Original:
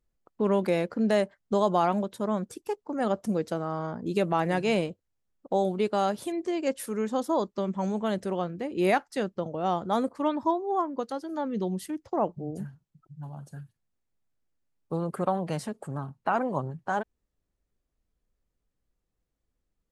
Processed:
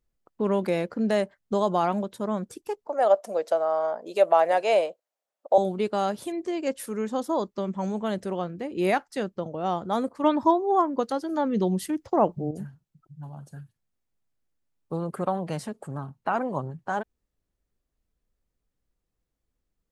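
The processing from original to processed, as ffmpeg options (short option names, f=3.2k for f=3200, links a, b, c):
-filter_complex "[0:a]asettb=1/sr,asplit=3[a][b][c];[a]atrim=end=2.874[d];[b]atrim=start=2.87:end=5.58,asetpts=PTS-STARTPTS,afade=t=in:d=0.004:c=qsin,afade=t=out:st=2.706:d=0.004:c=qsin,highpass=f=620:t=q:w=4.1[e];[c]atrim=start=5.576[f];[d][e]acrossfade=d=0.004:c1=hsin:c2=qsin[g];[g][f]acrossfade=d=0.004:c1=qsin:c2=hsin,asplit=3[h][i][j];[h]atrim=end=10.242[k];[i]atrim=start=10.238:end=12.512,asetpts=PTS-STARTPTS,volume=5.5dB[l];[j]atrim=start=12.508[m];[k][l]acrossfade=d=0.004:c1=hsin:c2=hsin[n];[n][m]acrossfade=d=0.004:c1=hsin:c2=hsin"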